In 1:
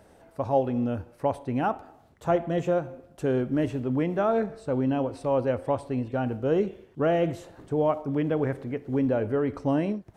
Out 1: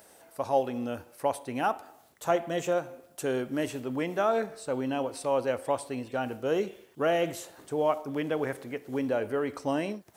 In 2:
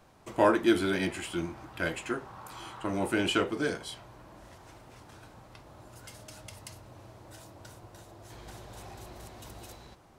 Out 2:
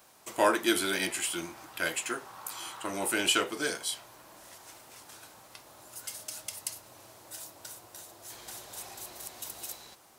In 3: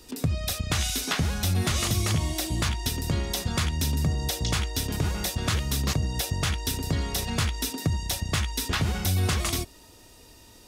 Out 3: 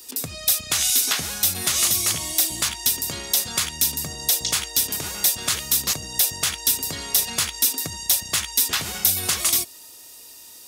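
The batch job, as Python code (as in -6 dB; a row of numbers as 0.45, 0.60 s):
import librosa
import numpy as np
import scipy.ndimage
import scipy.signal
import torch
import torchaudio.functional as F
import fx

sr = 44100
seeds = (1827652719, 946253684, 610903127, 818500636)

y = fx.riaa(x, sr, side='recording')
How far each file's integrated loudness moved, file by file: -3.5, -2.5, +7.0 LU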